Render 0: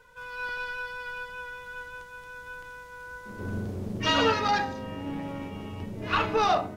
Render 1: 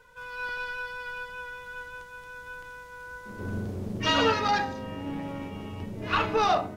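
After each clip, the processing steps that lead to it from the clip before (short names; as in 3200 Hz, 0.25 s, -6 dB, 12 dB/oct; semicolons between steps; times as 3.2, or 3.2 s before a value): nothing audible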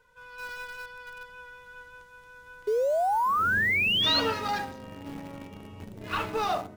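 painted sound rise, 2.67–4.2, 410–4400 Hz -20 dBFS; in parallel at -11 dB: bit-crush 5-bit; on the sum: gain -7 dB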